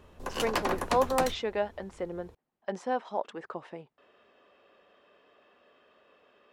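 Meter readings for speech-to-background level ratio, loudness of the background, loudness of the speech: 0.0 dB, -33.0 LUFS, -33.0 LUFS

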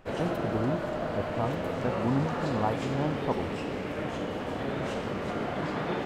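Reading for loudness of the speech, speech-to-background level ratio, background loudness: -33.5 LUFS, -1.0 dB, -32.5 LUFS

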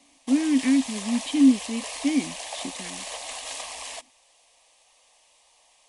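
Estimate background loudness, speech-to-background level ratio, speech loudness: -34.5 LUFS, 11.0 dB, -23.5 LUFS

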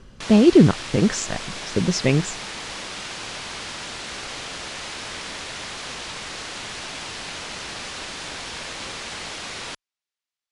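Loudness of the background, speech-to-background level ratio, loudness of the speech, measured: -31.5 LUFS, 13.0 dB, -18.5 LUFS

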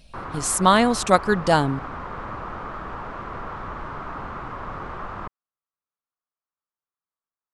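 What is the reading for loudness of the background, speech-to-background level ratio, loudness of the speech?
-34.0 LUFS, 14.5 dB, -19.5 LUFS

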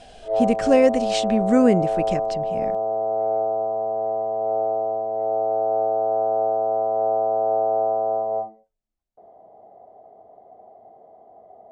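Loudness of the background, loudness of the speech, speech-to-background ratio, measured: -23.5 LUFS, -20.5 LUFS, 3.0 dB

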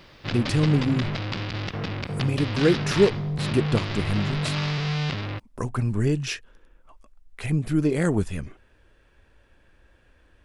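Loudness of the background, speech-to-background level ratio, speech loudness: -28.5 LUFS, 3.0 dB, -25.5 LUFS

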